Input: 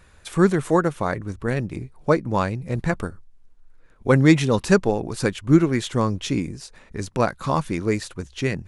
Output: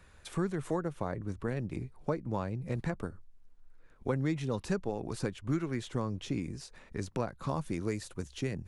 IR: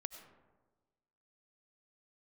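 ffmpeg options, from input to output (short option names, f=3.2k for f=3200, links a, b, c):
-filter_complex "[0:a]asetnsamples=n=441:p=0,asendcmd='7.49 highshelf g 8.5',highshelf=f=6.5k:g=-2.5,acrossover=split=100|840[a][b][c];[a]acompressor=threshold=-38dB:ratio=4[d];[b]acompressor=threshold=-26dB:ratio=4[e];[c]acompressor=threshold=-39dB:ratio=4[f];[d][e][f]amix=inputs=3:normalize=0,volume=-5.5dB"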